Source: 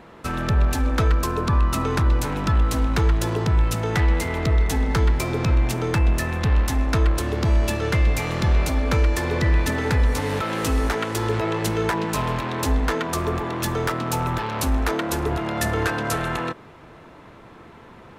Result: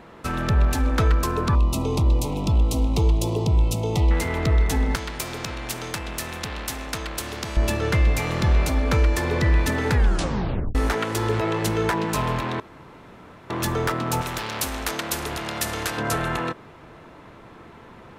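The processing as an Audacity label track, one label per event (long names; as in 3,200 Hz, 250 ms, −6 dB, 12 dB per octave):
1.550000	4.110000	Butterworth band-reject 1,600 Hz, Q 0.92
4.950000	7.570000	every bin compressed towards the loudest bin 2 to 1
9.940000	9.940000	tape stop 0.81 s
12.600000	13.500000	fill with room tone
14.210000	15.980000	every bin compressed towards the loudest bin 2 to 1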